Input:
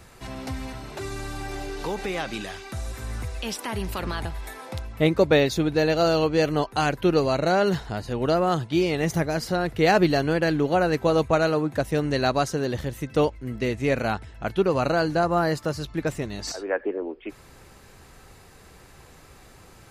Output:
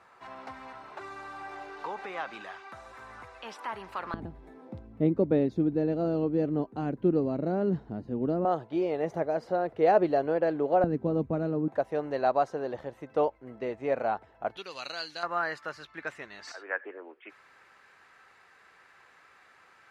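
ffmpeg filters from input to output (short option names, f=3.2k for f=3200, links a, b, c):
-af "asetnsamples=n=441:p=0,asendcmd='4.14 bandpass f 250;8.45 bandpass f 600;10.84 bandpass f 230;11.68 bandpass f 720;14.57 bandpass f 3900;15.23 bandpass f 1600',bandpass=f=1.1k:t=q:w=1.6:csg=0"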